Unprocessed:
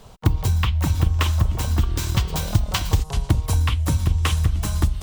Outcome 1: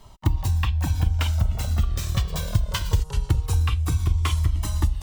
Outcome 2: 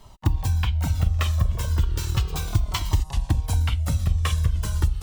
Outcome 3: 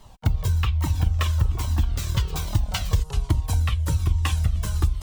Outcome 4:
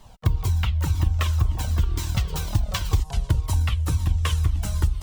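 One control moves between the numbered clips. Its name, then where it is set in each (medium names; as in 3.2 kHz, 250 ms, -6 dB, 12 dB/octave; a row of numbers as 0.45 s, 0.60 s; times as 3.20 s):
Shepard-style flanger, rate: 0.22 Hz, 0.35 Hz, 1.2 Hz, 2 Hz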